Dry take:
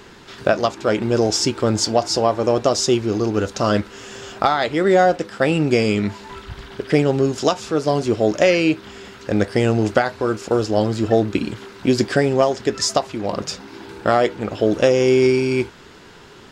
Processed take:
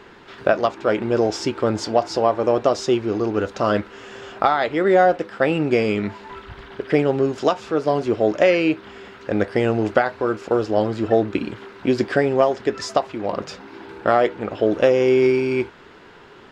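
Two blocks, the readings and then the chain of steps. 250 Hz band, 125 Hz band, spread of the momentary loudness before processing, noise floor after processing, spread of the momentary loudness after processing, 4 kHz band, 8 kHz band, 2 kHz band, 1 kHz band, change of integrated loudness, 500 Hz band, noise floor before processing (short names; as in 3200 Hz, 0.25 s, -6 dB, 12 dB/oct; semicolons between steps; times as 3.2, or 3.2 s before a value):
-2.5 dB, -5.5 dB, 12 LU, -45 dBFS, 14 LU, -7.5 dB, under -10 dB, -1.0 dB, 0.0 dB, -1.5 dB, -0.5 dB, -43 dBFS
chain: tone controls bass -6 dB, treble -14 dB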